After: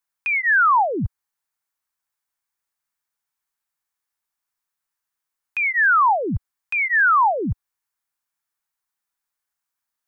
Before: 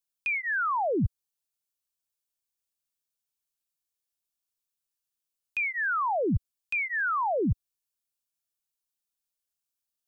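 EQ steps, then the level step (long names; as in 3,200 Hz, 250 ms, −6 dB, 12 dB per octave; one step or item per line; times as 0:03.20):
flat-topped bell 1,300 Hz +10 dB
+2.0 dB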